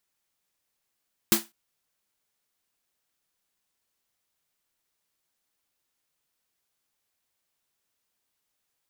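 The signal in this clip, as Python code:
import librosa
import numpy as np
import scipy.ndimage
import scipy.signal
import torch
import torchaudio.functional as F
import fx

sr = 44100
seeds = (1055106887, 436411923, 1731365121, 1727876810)

y = fx.drum_snare(sr, seeds[0], length_s=0.2, hz=220.0, second_hz=340.0, noise_db=3, noise_from_hz=630.0, decay_s=0.19, noise_decay_s=0.22)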